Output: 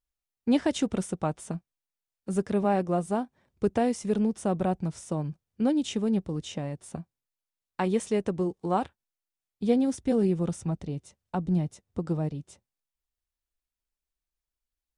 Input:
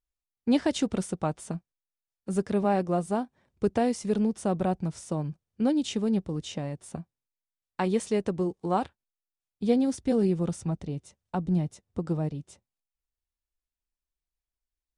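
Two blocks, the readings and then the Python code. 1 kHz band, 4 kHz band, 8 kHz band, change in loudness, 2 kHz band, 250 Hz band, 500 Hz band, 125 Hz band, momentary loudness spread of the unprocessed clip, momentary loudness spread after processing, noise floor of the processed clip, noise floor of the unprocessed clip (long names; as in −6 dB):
0.0 dB, −1.0 dB, −0.5 dB, 0.0 dB, 0.0 dB, 0.0 dB, 0.0 dB, 0.0 dB, 12 LU, 12 LU, below −85 dBFS, below −85 dBFS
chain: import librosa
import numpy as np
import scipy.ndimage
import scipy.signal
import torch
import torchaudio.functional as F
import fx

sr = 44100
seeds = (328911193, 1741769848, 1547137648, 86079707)

y = fx.dynamic_eq(x, sr, hz=4500.0, q=4.1, threshold_db=-59.0, ratio=4.0, max_db=-5)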